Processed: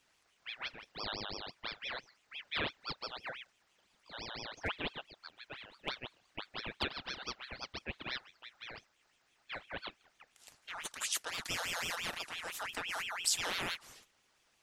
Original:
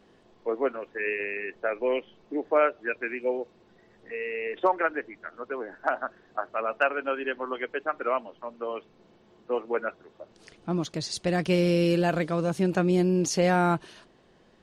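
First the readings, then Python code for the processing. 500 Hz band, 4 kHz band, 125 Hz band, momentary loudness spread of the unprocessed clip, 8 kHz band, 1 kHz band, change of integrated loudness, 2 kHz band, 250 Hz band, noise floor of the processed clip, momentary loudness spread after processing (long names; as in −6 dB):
−22.5 dB, +2.0 dB, −22.0 dB, 13 LU, −0.5 dB, −14.5 dB, −12.0 dB, −8.5 dB, −23.0 dB, −74 dBFS, 14 LU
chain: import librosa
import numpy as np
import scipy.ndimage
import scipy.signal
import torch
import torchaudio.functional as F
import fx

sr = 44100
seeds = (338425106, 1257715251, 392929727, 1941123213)

y = librosa.effects.preemphasis(x, coef=0.9, zi=[0.0])
y = fx.hum_notches(y, sr, base_hz=50, count=3)
y = fx.ring_lfo(y, sr, carrier_hz=2000.0, swing_pct=50, hz=5.9)
y = y * 10.0 ** (4.5 / 20.0)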